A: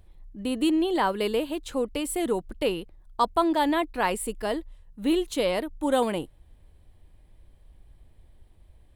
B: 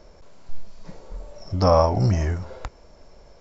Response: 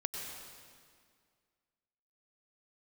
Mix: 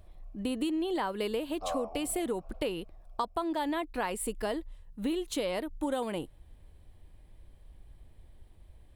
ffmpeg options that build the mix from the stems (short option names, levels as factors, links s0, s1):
-filter_complex "[0:a]volume=1[s0];[1:a]asplit=3[s1][s2][s3];[s1]bandpass=f=730:t=q:w=8,volume=1[s4];[s2]bandpass=f=1090:t=q:w=8,volume=0.501[s5];[s3]bandpass=f=2440:t=q:w=8,volume=0.355[s6];[s4][s5][s6]amix=inputs=3:normalize=0,volume=0.376,asplit=2[s7][s8];[s8]volume=0.15[s9];[2:a]atrim=start_sample=2205[s10];[s9][s10]afir=irnorm=-1:irlink=0[s11];[s0][s7][s11]amix=inputs=3:normalize=0,acompressor=threshold=0.0355:ratio=6"